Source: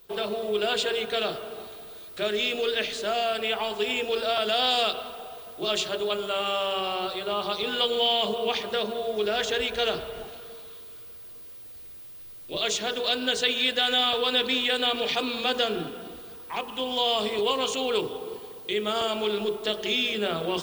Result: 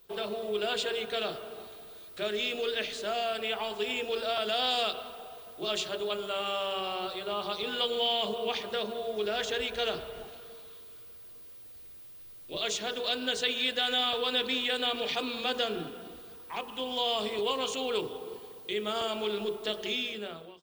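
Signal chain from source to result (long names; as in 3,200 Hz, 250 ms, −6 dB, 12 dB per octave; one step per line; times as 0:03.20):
fade-out on the ending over 0.80 s
level −5 dB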